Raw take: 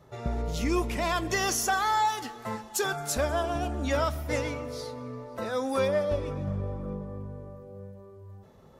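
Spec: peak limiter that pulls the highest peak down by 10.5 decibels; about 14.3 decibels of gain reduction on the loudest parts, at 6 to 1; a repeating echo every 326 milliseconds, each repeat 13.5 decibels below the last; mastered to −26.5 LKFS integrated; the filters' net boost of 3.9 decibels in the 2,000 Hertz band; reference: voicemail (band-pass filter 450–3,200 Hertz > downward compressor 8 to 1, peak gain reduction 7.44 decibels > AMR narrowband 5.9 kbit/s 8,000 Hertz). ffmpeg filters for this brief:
ffmpeg -i in.wav -af "equalizer=frequency=2000:width_type=o:gain=5.5,acompressor=threshold=-37dB:ratio=6,alimiter=level_in=10dB:limit=-24dB:level=0:latency=1,volume=-10dB,highpass=450,lowpass=3200,aecho=1:1:326|652:0.211|0.0444,acompressor=threshold=-45dB:ratio=8,volume=25dB" -ar 8000 -c:a libopencore_amrnb -b:a 5900 out.amr

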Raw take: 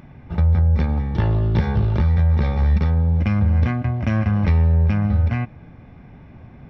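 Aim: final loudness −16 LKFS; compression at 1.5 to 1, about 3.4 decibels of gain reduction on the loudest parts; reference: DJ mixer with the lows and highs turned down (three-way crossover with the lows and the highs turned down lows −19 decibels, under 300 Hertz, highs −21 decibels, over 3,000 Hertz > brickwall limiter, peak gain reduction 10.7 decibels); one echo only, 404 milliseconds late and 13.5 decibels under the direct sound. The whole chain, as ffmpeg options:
ffmpeg -i in.wav -filter_complex "[0:a]acompressor=threshold=-22dB:ratio=1.5,acrossover=split=300 3000:gain=0.112 1 0.0891[link_01][link_02][link_03];[link_01][link_02][link_03]amix=inputs=3:normalize=0,aecho=1:1:404:0.211,volume=22dB,alimiter=limit=-6.5dB:level=0:latency=1" out.wav

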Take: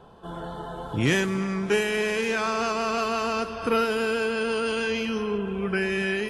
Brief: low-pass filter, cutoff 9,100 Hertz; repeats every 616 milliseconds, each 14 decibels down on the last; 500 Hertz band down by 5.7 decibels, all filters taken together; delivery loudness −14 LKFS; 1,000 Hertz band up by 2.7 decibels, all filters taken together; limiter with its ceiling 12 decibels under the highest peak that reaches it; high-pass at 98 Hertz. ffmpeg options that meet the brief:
ffmpeg -i in.wav -af "highpass=98,lowpass=9100,equalizer=frequency=500:width_type=o:gain=-8.5,equalizer=frequency=1000:width_type=o:gain=5.5,alimiter=limit=-22dB:level=0:latency=1,aecho=1:1:616|1232:0.2|0.0399,volume=17dB" out.wav

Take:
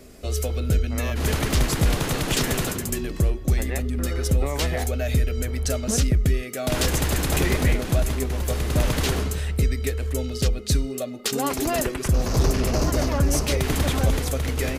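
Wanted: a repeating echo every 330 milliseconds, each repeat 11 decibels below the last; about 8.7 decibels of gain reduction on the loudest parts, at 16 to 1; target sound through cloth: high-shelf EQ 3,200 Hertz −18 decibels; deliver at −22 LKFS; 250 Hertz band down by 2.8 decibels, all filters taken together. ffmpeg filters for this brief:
ffmpeg -i in.wav -af "equalizer=frequency=250:width_type=o:gain=-3.5,acompressor=threshold=-24dB:ratio=16,highshelf=frequency=3200:gain=-18,aecho=1:1:330|660|990:0.282|0.0789|0.0221,volume=8.5dB" out.wav

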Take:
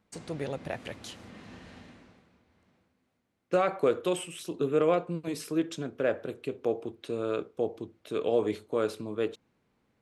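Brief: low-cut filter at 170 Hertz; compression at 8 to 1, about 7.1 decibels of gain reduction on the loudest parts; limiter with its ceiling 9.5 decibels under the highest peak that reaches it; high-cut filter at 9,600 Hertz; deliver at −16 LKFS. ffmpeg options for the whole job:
ffmpeg -i in.wav -af "highpass=170,lowpass=9600,acompressor=threshold=-27dB:ratio=8,volume=23.5dB,alimiter=limit=-4dB:level=0:latency=1" out.wav

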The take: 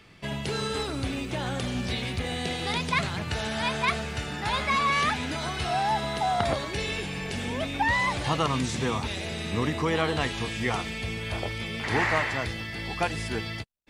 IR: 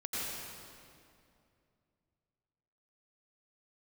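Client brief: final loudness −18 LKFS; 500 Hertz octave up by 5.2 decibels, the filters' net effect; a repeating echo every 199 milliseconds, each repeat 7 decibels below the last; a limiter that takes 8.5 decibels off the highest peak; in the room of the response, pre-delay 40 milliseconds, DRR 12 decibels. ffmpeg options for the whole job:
-filter_complex "[0:a]equalizer=frequency=500:width_type=o:gain=6.5,alimiter=limit=-17dB:level=0:latency=1,aecho=1:1:199|398|597|796|995:0.447|0.201|0.0905|0.0407|0.0183,asplit=2[link_01][link_02];[1:a]atrim=start_sample=2205,adelay=40[link_03];[link_02][link_03]afir=irnorm=-1:irlink=0,volume=-16.5dB[link_04];[link_01][link_04]amix=inputs=2:normalize=0,volume=9dB"

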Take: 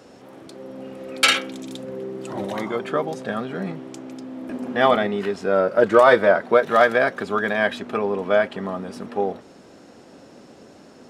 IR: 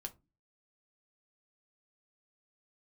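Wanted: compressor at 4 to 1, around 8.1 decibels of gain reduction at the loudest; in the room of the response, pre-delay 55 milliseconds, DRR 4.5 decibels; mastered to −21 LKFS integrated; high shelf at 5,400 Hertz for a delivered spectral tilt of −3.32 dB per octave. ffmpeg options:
-filter_complex "[0:a]highshelf=frequency=5400:gain=-7,acompressor=threshold=-19dB:ratio=4,asplit=2[link_01][link_02];[1:a]atrim=start_sample=2205,adelay=55[link_03];[link_02][link_03]afir=irnorm=-1:irlink=0,volume=-1dB[link_04];[link_01][link_04]amix=inputs=2:normalize=0,volume=4dB"

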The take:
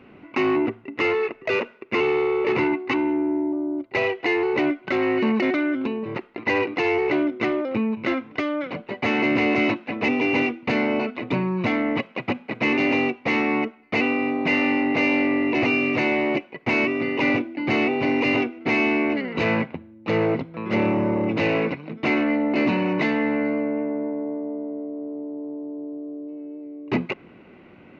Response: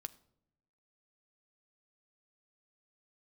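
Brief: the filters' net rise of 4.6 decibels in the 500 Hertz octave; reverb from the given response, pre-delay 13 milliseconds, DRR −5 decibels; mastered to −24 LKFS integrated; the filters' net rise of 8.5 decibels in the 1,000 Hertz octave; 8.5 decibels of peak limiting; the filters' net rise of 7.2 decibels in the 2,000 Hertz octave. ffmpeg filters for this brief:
-filter_complex "[0:a]equalizer=frequency=500:width_type=o:gain=4,equalizer=frequency=1000:width_type=o:gain=8,equalizer=frequency=2000:width_type=o:gain=6.5,alimiter=limit=-13dB:level=0:latency=1,asplit=2[link_01][link_02];[1:a]atrim=start_sample=2205,adelay=13[link_03];[link_02][link_03]afir=irnorm=-1:irlink=0,volume=9dB[link_04];[link_01][link_04]amix=inputs=2:normalize=0,volume=-8dB"

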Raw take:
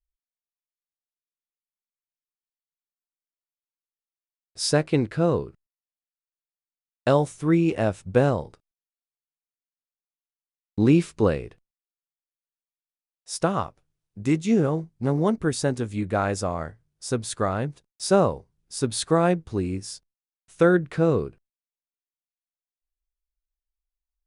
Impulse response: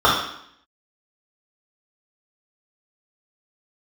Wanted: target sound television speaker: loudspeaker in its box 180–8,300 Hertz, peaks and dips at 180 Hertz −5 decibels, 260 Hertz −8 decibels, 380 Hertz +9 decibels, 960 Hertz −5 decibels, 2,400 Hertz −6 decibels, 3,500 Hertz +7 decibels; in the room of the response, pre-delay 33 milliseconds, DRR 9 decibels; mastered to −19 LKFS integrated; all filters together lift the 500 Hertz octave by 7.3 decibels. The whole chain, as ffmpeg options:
-filter_complex "[0:a]equalizer=frequency=500:width_type=o:gain=5.5,asplit=2[link_01][link_02];[1:a]atrim=start_sample=2205,adelay=33[link_03];[link_02][link_03]afir=irnorm=-1:irlink=0,volume=-34dB[link_04];[link_01][link_04]amix=inputs=2:normalize=0,highpass=frequency=180:width=0.5412,highpass=frequency=180:width=1.3066,equalizer=frequency=180:width_type=q:width=4:gain=-5,equalizer=frequency=260:width_type=q:width=4:gain=-8,equalizer=frequency=380:width_type=q:width=4:gain=9,equalizer=frequency=960:width_type=q:width=4:gain=-5,equalizer=frequency=2400:width_type=q:width=4:gain=-6,equalizer=frequency=3500:width_type=q:width=4:gain=7,lowpass=frequency=8300:width=0.5412,lowpass=frequency=8300:width=1.3066,volume=0.5dB"

